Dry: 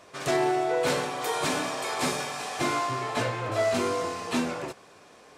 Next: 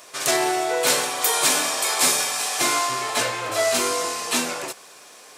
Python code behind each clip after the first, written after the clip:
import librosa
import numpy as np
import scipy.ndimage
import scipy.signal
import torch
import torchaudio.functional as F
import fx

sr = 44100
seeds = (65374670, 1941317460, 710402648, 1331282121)

y = fx.riaa(x, sr, side='recording')
y = y * 10.0 ** (4.5 / 20.0)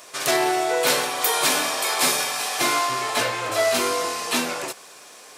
y = fx.dynamic_eq(x, sr, hz=7600.0, q=1.3, threshold_db=-35.0, ratio=4.0, max_db=-6)
y = y * 10.0 ** (1.0 / 20.0)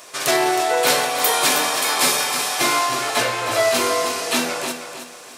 y = fx.echo_feedback(x, sr, ms=316, feedback_pct=33, wet_db=-9.0)
y = y * 10.0 ** (2.5 / 20.0)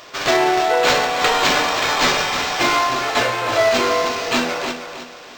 y = np.interp(np.arange(len(x)), np.arange(len(x))[::4], x[::4])
y = y * 10.0 ** (2.5 / 20.0)